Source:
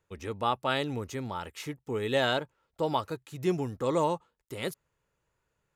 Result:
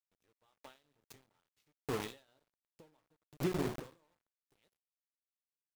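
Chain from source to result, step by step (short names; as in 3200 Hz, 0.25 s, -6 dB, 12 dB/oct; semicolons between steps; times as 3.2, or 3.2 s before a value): 2.28–3.84 bell 280 Hz +9 dB 2.9 oct; shoebox room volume 210 m³, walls mixed, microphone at 0.49 m; compressor 3:1, threshold -41 dBFS, peak gain reduction 19 dB; dynamic EQ 4300 Hz, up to +5 dB, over -60 dBFS, Q 1.1; sample gate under -38.5 dBFS; ending taper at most 160 dB/s; gain +5 dB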